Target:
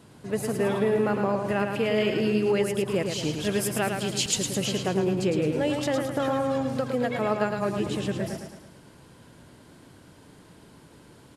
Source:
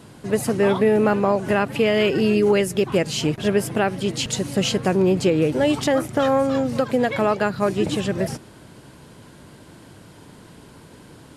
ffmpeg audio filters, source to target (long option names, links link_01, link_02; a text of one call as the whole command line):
ffmpeg -i in.wav -filter_complex "[0:a]asettb=1/sr,asplit=3[link_01][link_02][link_03];[link_01]atrim=end=3.334[link_04];[link_02]atrim=start=3.33:end=4.56,asetpts=PTS-STARTPTS,afade=type=in:duration=0.004:curve=qsin,afade=type=out:start_time=1.226:duration=0.004:curve=qsin,highshelf=frequency=3200:gain=10[link_05];[link_03]atrim=start=4.556[link_06];[link_04][link_05]acrossfade=duration=0.004:curve1=hsin:curve2=qsin[link_07];[link_07][link_06]acrossfade=duration=0.004:curve1=qsin:curve2=hsin,aecho=1:1:109|218|327|436|545|654:0.531|0.255|0.122|0.0587|0.0282|0.0135,volume=-7.5dB" out.wav